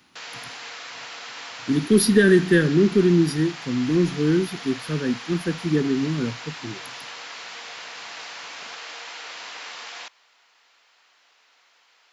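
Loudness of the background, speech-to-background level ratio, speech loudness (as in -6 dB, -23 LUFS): -35.5 LUFS, 14.5 dB, -21.0 LUFS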